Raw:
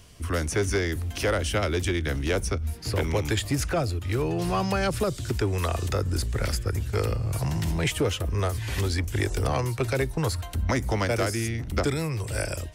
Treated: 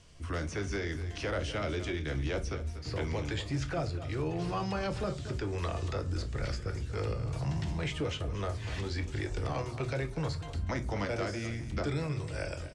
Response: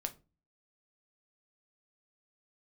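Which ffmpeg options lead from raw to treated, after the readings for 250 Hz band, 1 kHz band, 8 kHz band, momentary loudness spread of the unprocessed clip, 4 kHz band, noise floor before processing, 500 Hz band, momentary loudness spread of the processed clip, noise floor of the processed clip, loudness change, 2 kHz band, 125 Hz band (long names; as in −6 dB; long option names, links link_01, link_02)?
−7.0 dB, −8.0 dB, −14.5 dB, 4 LU, −8.5 dB, −36 dBFS, −8.0 dB, 3 LU, −41 dBFS, −8.0 dB, −8.0 dB, −7.5 dB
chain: -filter_complex "[0:a]lowpass=frequency=8500:width=0.5412,lowpass=frequency=8500:width=1.3066,aecho=1:1:241:0.188,alimiter=limit=-19dB:level=0:latency=1:release=13[link_01];[1:a]atrim=start_sample=2205[link_02];[link_01][link_02]afir=irnorm=-1:irlink=0,acrossover=split=6000[link_03][link_04];[link_04]acompressor=threshold=-54dB:ratio=4:attack=1:release=60[link_05];[link_03][link_05]amix=inputs=2:normalize=0,volume=-6dB"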